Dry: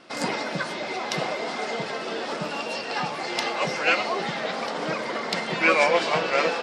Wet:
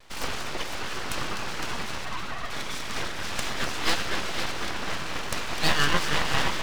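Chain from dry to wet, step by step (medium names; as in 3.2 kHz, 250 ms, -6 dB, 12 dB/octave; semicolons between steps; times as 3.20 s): 2.05–2.50 s: formants replaced by sine waves; multi-head delay 253 ms, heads first and second, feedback 44%, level -9.5 dB; vibrato 1.2 Hz 39 cents; full-wave rectifier; trim -1 dB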